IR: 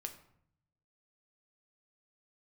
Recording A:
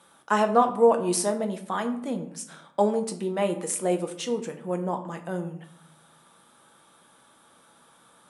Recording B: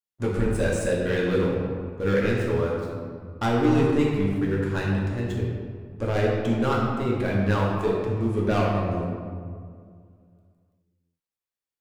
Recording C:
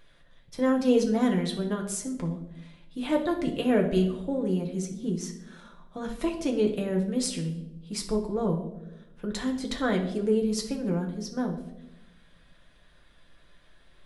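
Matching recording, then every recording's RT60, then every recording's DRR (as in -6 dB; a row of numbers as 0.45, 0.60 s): A; 0.65, 2.1, 0.95 s; 5.0, -4.5, 0.5 dB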